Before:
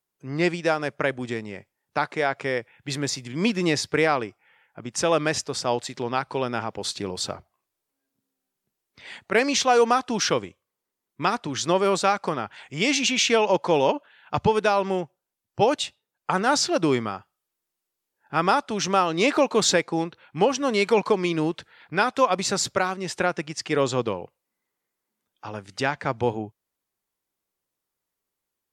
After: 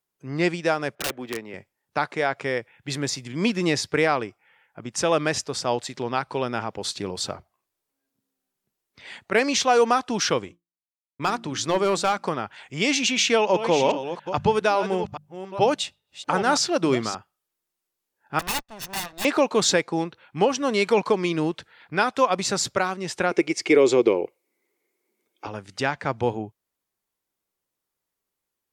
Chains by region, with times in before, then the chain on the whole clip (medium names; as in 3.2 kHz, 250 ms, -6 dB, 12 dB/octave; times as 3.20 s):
0.95–1.54 s: median filter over 5 samples + three-band isolator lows -13 dB, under 240 Hz, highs -12 dB, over 4.1 kHz + integer overflow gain 20.5 dB
10.44–12.25 s: de-hum 57.4 Hz, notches 6 + expander -47 dBFS + hard clipper -14.5 dBFS
13.08–17.15 s: chunks repeated in reverse 419 ms, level -10.5 dB + hum notches 50/100/150/200 Hz
18.39–19.25 s: comb filter that takes the minimum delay 1.1 ms + integer overflow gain 20 dB + upward expansion 2.5:1, over -44 dBFS
23.31–25.47 s: tone controls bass -8 dB, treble +4 dB + compression 2:1, threshold -25 dBFS + small resonant body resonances 360/2200 Hz, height 17 dB, ringing for 20 ms
whole clip: none